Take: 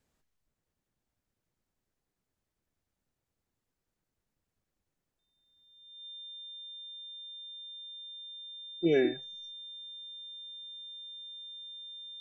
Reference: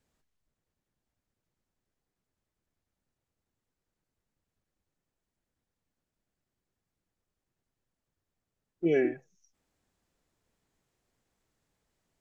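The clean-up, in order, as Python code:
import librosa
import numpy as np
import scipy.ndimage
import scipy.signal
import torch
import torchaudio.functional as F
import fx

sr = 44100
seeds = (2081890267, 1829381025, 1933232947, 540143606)

y = fx.notch(x, sr, hz=3600.0, q=30.0)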